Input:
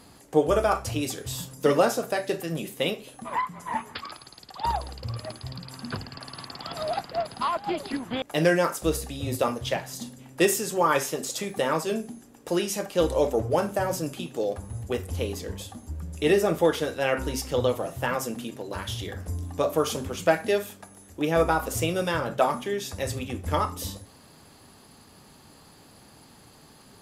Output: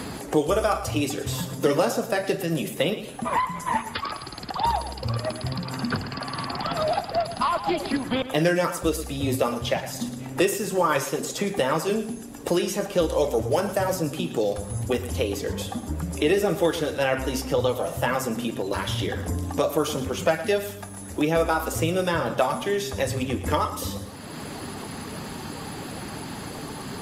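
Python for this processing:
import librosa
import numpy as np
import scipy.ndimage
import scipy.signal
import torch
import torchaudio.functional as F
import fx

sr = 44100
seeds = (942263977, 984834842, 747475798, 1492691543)

y = fx.spec_quant(x, sr, step_db=15)
y = fx.echo_feedback(y, sr, ms=112, feedback_pct=27, wet_db=-14)
y = fx.band_squash(y, sr, depth_pct=70)
y = y * librosa.db_to_amplitude(2.5)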